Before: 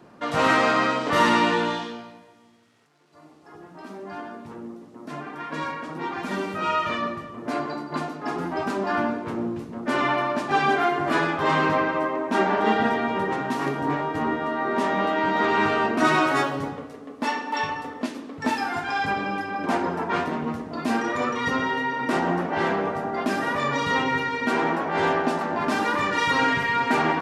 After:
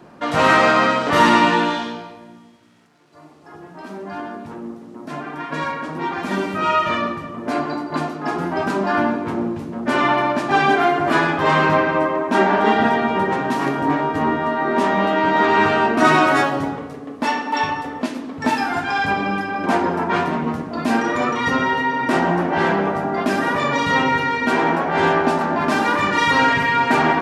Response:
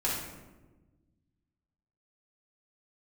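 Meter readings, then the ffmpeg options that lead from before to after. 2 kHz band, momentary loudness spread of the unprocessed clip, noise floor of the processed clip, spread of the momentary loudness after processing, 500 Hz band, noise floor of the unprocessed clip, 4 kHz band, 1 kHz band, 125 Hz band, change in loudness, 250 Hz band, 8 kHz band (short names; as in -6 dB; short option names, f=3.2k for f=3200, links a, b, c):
+5.5 dB, 12 LU, -42 dBFS, 12 LU, +5.5 dB, -49 dBFS, +5.0 dB, +6.0 dB, +6.5 dB, +5.5 dB, +5.5 dB, +4.5 dB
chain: -filter_complex "[0:a]asplit=2[a][b];[1:a]atrim=start_sample=2205,lowpass=4.1k[c];[b][c]afir=irnorm=-1:irlink=0,volume=-17dB[d];[a][d]amix=inputs=2:normalize=0,volume=4.5dB"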